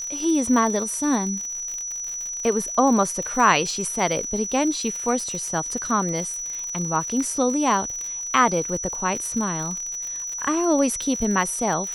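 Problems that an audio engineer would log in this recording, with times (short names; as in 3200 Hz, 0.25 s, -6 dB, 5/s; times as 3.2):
crackle 69/s -28 dBFS
tone 5900 Hz -28 dBFS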